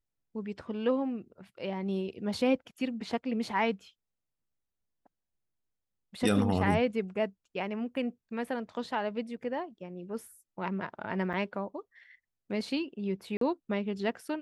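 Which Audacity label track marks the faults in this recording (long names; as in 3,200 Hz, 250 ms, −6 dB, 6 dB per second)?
11.330000	11.340000	drop-out 5.5 ms
13.370000	13.410000	drop-out 43 ms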